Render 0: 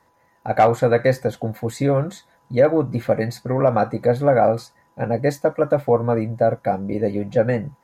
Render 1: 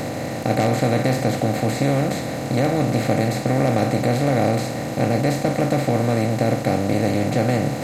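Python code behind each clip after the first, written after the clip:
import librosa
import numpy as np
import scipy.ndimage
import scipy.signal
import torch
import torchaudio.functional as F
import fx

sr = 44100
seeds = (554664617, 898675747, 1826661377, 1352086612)

y = fx.bin_compress(x, sr, power=0.2)
y = fx.band_shelf(y, sr, hz=820.0, db=-11.0, octaves=2.6)
y = y * librosa.db_to_amplitude(-2.0)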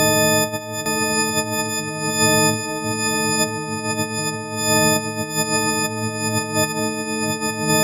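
y = fx.freq_snap(x, sr, grid_st=6)
y = fx.over_compress(y, sr, threshold_db=-22.0, ratio=-0.5)
y = y + 10.0 ** (-5.5 / 20.0) * np.pad(y, (int(859 * sr / 1000.0), 0))[:len(y)]
y = y * librosa.db_to_amplitude(1.0)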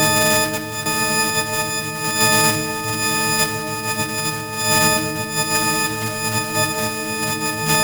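y = fx.block_float(x, sr, bits=3)
y = fx.room_shoebox(y, sr, seeds[0], volume_m3=1300.0, walls='mixed', distance_m=0.89)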